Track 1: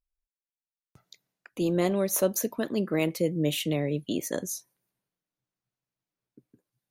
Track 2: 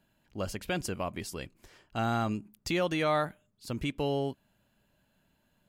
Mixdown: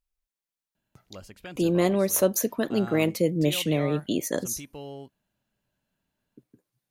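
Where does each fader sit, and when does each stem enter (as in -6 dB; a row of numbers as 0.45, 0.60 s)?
+3.0, -9.5 dB; 0.00, 0.75 s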